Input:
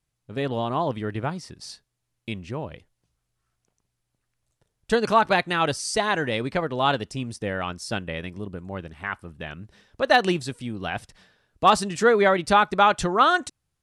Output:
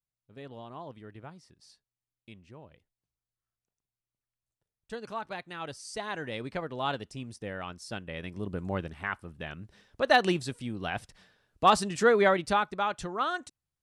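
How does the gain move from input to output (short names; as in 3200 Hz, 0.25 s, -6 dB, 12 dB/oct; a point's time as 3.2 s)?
5.38 s -18 dB
6.45 s -9.5 dB
8.03 s -9.5 dB
8.66 s +2.5 dB
9.16 s -4 dB
12.3 s -4 dB
12.78 s -12 dB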